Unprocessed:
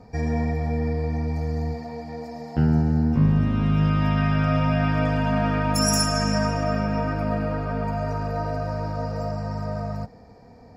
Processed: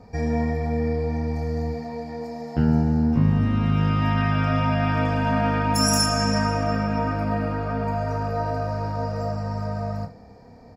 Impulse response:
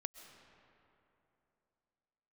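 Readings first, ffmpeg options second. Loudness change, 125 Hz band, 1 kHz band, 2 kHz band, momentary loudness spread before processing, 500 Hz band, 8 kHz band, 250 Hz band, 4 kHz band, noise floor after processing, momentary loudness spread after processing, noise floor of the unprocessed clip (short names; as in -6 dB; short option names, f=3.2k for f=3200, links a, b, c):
0.0 dB, -0.5 dB, +2.5 dB, +1.0 dB, 10 LU, +1.0 dB, +0.5 dB, +0.5 dB, +1.5 dB, -47 dBFS, 9 LU, -47 dBFS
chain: -af "aecho=1:1:30|75:0.447|0.178"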